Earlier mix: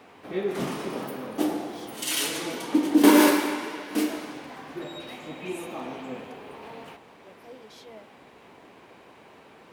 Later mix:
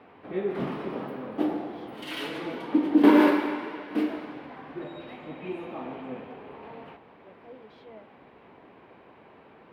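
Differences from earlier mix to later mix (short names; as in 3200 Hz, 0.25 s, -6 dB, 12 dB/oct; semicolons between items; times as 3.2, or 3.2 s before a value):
background: add high shelf 9400 Hz +10.5 dB; master: add air absorption 420 m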